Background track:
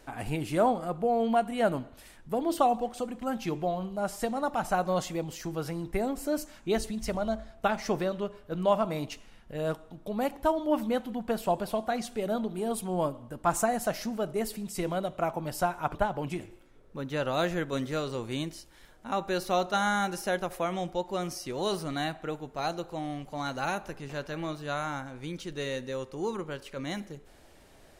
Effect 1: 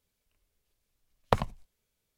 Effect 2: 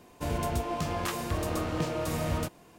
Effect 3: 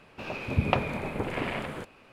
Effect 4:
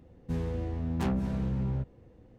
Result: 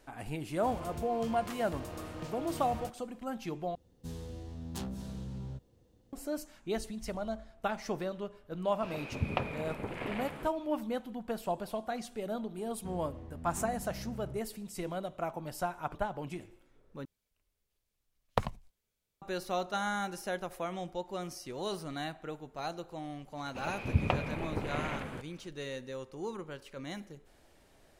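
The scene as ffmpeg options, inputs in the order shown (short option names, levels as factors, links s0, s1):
-filter_complex "[4:a]asplit=2[s0][s1];[3:a]asplit=2[s2][s3];[0:a]volume=0.473[s4];[s0]aexciter=amount=5.3:drive=4.2:freq=3200[s5];[s3]lowshelf=f=120:g=7[s6];[s4]asplit=3[s7][s8][s9];[s7]atrim=end=3.754[s10];[s5]atrim=end=2.38,asetpts=PTS-STARTPTS,volume=0.299[s11];[s8]atrim=start=6.126:end=17.054[s12];[1:a]atrim=end=2.17,asetpts=PTS-STARTPTS,volume=0.562[s13];[s9]atrim=start=19.216[s14];[2:a]atrim=end=2.78,asetpts=PTS-STARTPTS,volume=0.266,afade=t=in:d=0.004:c=hsin,afade=t=out:st=2.776:d=0.004:c=hsin,adelay=420[s15];[s2]atrim=end=2.12,asetpts=PTS-STARTPTS,volume=0.422,afade=t=in:d=0.004:c=hsin,afade=t=out:st=2.116:d=0.004:c=hsin,adelay=8640[s16];[s1]atrim=end=2.38,asetpts=PTS-STARTPTS,volume=0.211,afade=t=in:d=0.004:c=hsin,afade=t=out:st=2.376:d=0.004:c=hsin,adelay=12550[s17];[s6]atrim=end=2.12,asetpts=PTS-STARTPTS,volume=0.501,afade=t=in:d=0.004:c=hsin,afade=t=out:st=2.116:d=0.004:c=hsin,adelay=23370[s18];[s10][s11]acrossfade=d=0.004:c1=hsin:c2=hsin[s19];[s19][s12]acrossfade=d=0.004:c1=hsin:c2=hsin[s20];[s20][s13]acrossfade=d=0.004:c1=hsin:c2=hsin[s21];[s21][s14]acrossfade=d=0.004:c1=hsin:c2=hsin[s22];[s22][s15][s16][s17][s18]amix=inputs=5:normalize=0"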